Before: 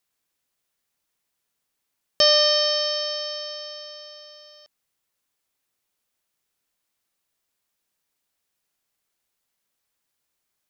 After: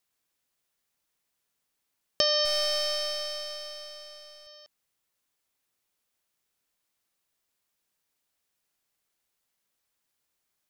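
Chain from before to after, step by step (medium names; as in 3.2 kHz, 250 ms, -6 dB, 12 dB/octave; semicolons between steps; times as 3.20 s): 2.45–4.47 s: partial rectifier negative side -7 dB; compression, threshold -20 dBFS, peak gain reduction 7 dB; trim -1.5 dB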